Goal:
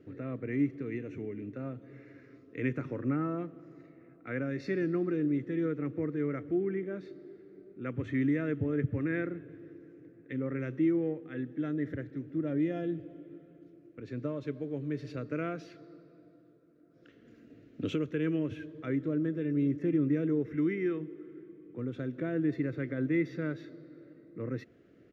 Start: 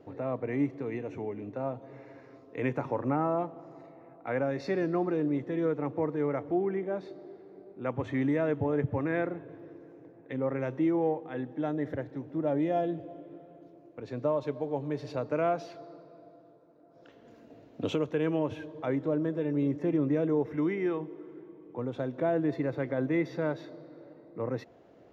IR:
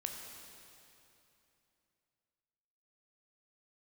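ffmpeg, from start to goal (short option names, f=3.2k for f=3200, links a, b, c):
-af "firequalizer=gain_entry='entry(330,0);entry(860,-23);entry(1300,-3);entry(1900,0);entry(3700,-5)':delay=0.05:min_phase=1"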